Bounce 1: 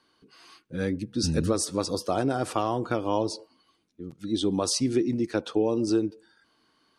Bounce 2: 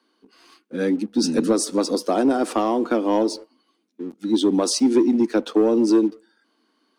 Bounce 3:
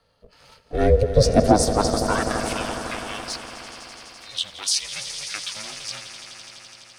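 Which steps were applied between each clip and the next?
steep high-pass 220 Hz 48 dB/oct; low shelf 320 Hz +11.5 dB; sample leveller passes 1
high-pass sweep 140 Hz -> 2300 Hz, 0.68–2.49; swelling echo 84 ms, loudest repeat 5, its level -14 dB; ring modulator 210 Hz; gain +3.5 dB

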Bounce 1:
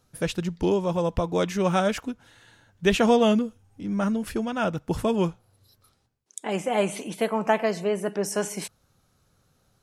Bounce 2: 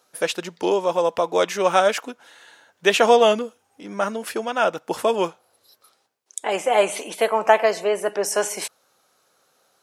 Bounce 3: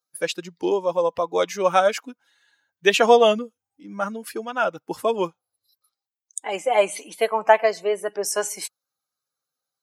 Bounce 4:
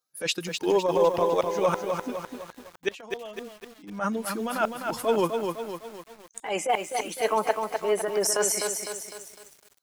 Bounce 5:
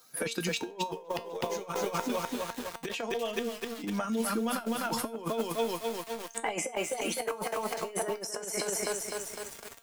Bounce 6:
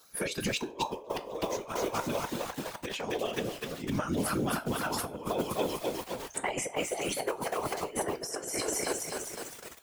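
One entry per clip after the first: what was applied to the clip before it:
Chebyshev high-pass 540 Hz, order 2; gain +7.5 dB
per-bin expansion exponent 1.5; gain +1.5 dB
transient shaper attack -11 dB, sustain +3 dB; flipped gate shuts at -13 dBFS, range -26 dB; lo-fi delay 0.253 s, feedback 55%, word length 8-bit, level -5 dB; gain +2 dB
negative-ratio compressor -31 dBFS, ratio -0.5; resonator 230 Hz, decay 0.25 s, harmonics all, mix 70%; three-band squash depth 70%; gain +6 dB
whisperiser

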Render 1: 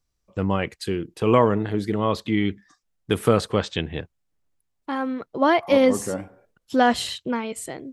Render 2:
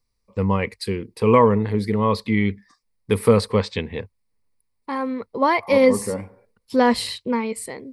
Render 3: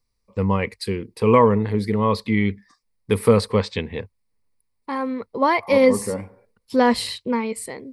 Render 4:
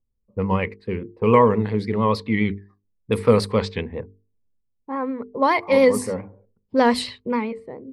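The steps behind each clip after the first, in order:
ripple EQ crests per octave 0.91, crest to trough 10 dB
nothing audible
vibrato 7.1 Hz 60 cents; low-pass opened by the level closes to 360 Hz, open at -14.5 dBFS; notches 50/100/150/200/250/300/350/400/450 Hz

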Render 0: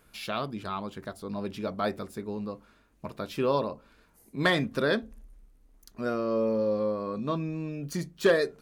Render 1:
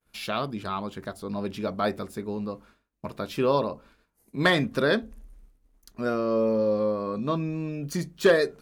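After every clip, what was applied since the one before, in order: expander -52 dBFS; gain +3 dB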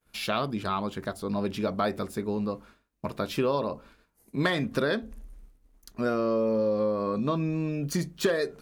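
compressor 6:1, threshold -25 dBFS, peak gain reduction 10.5 dB; gain +2.5 dB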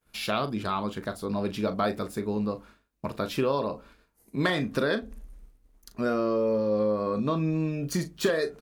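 doubler 38 ms -11.5 dB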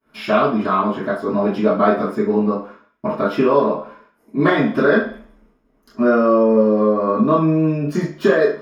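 reverb RT60 0.50 s, pre-delay 3 ms, DRR -12 dB; gain -10 dB

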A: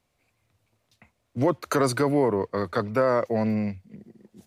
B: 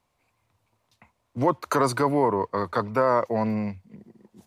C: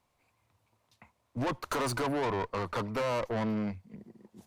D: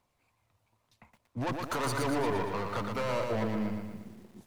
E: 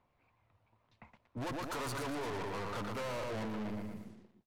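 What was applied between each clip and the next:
bell 970 Hz +9.5 dB 0.58 oct; gain -1.5 dB
tube stage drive 28 dB, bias 0.45
half-wave gain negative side -3 dB; phaser 0.92 Hz, delay 1.7 ms, feedback 20%; lo-fi delay 0.117 s, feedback 55%, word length 10-bit, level -4.5 dB
ending faded out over 0.67 s; soft clip -38.5 dBFS, distortion -7 dB; low-pass opened by the level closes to 2400 Hz, open at -43.5 dBFS; gain +1.5 dB

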